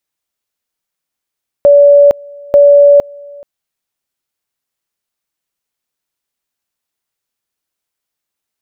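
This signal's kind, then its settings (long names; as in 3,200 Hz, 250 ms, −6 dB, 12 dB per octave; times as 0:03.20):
tone at two levels in turn 573 Hz −1.5 dBFS, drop 27 dB, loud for 0.46 s, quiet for 0.43 s, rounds 2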